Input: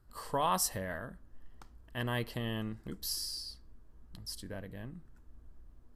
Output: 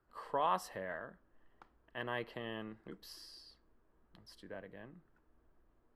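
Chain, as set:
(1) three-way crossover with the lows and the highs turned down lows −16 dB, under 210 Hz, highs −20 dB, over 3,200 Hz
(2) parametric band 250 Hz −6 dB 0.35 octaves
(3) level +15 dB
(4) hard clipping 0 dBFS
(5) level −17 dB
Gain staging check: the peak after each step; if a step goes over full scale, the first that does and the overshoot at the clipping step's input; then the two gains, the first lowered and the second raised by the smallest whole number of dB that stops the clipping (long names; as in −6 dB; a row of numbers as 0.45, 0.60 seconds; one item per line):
−19.0, −19.0, −4.0, −4.0, −21.0 dBFS
no step passes full scale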